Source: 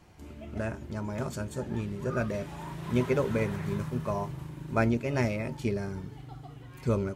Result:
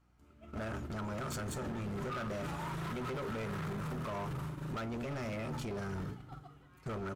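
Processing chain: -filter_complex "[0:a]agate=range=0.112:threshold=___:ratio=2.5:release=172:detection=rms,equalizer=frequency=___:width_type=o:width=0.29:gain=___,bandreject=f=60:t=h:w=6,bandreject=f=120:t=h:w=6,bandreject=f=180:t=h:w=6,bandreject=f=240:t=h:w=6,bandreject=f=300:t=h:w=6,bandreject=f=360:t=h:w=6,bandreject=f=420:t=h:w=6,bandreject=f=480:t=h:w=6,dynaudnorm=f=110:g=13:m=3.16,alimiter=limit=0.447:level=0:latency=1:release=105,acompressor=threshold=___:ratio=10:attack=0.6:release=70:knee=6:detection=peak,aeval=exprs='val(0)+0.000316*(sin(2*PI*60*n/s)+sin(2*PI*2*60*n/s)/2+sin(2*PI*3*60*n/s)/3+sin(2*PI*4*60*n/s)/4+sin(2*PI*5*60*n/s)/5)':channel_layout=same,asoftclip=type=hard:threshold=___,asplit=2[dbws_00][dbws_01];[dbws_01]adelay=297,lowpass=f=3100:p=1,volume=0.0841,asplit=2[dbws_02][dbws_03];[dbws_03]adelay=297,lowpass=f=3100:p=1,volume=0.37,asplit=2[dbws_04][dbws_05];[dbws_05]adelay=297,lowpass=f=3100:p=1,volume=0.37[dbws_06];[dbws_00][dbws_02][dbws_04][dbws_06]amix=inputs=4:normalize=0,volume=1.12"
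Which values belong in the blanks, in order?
0.02, 1300, 12.5, 0.0282, 0.0141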